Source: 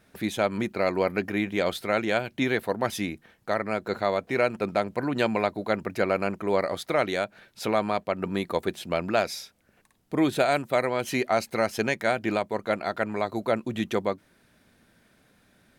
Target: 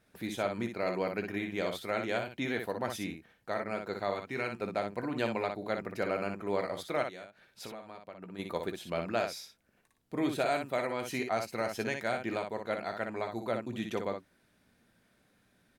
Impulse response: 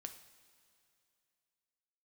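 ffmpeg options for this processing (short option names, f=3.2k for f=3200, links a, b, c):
-filter_complex "[0:a]asettb=1/sr,asplit=3[a][b][c];[a]atrim=end=4.134[d];[b]atrim=start=4.13:end=4.58,asetpts=PTS-STARTPTS,afade=t=in:d=0.004:c=qsin,afade=t=out:st=0.446:d=0.004:c=qsin,equalizer=f=580:t=o:w=0.68:g=-9[e];[c]atrim=start=4.576[f];[d][e]acrossfade=d=0.004:c1=hsin:c2=qsin[g];[g][f]acrossfade=d=0.004:c1=qsin:c2=hsin,asplit=3[h][i][j];[h]afade=t=out:st=7.02:d=0.02[k];[i]acompressor=threshold=-34dB:ratio=12,afade=t=in:st=7.02:d=0.02,afade=t=out:st=8.38:d=0.02[l];[j]afade=t=in:st=8.38:d=0.02[m];[k][l][m]amix=inputs=3:normalize=0,aecho=1:1:17|60:0.266|0.501,volume=-8.5dB"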